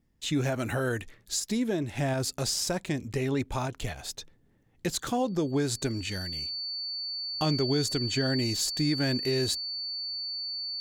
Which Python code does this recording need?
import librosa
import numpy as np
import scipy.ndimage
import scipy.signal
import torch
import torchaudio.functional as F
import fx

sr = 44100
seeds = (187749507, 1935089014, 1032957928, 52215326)

y = fx.notch(x, sr, hz=4500.0, q=30.0)